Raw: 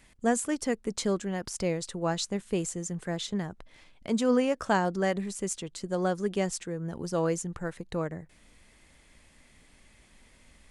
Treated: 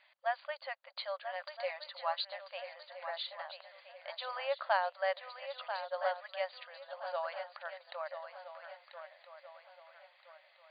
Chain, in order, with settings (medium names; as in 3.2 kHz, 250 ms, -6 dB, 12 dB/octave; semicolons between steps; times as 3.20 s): brick-wall FIR band-pass 530–4800 Hz; 1.35–2.25 s: comb 5.1 ms, depth 55%; on a send: shuffle delay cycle 1319 ms, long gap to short 3:1, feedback 36%, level -9 dB; on the sum: trim -3.5 dB